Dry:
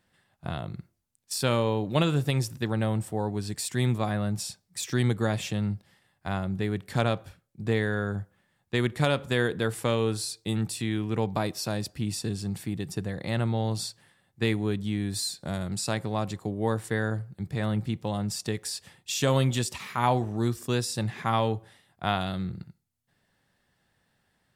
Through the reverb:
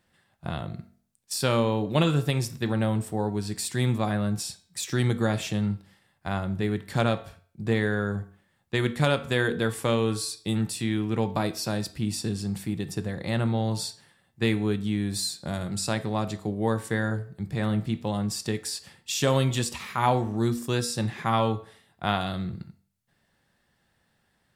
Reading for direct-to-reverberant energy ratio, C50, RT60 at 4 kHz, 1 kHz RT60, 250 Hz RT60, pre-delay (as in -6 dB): 10.0 dB, 16.0 dB, 0.45 s, 0.45 s, 0.50 s, 4 ms